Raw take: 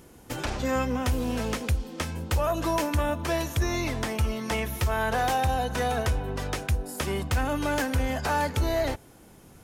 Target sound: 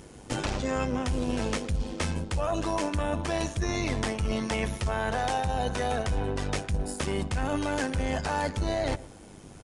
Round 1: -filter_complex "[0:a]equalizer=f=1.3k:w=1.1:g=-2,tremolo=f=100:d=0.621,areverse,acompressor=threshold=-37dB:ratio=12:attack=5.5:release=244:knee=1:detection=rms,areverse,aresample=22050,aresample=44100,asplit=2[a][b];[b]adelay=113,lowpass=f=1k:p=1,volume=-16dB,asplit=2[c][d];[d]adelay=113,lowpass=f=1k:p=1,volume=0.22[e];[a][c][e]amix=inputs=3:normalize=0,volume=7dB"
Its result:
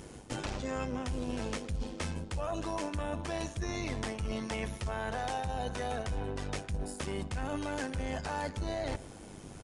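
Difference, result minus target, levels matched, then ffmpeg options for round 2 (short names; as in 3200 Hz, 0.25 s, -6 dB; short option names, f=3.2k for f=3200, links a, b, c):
compressor: peak gain reduction +7 dB
-filter_complex "[0:a]equalizer=f=1.3k:w=1.1:g=-2,tremolo=f=100:d=0.621,areverse,acompressor=threshold=-29.5dB:ratio=12:attack=5.5:release=244:knee=1:detection=rms,areverse,aresample=22050,aresample=44100,asplit=2[a][b];[b]adelay=113,lowpass=f=1k:p=1,volume=-16dB,asplit=2[c][d];[d]adelay=113,lowpass=f=1k:p=1,volume=0.22[e];[a][c][e]amix=inputs=3:normalize=0,volume=7dB"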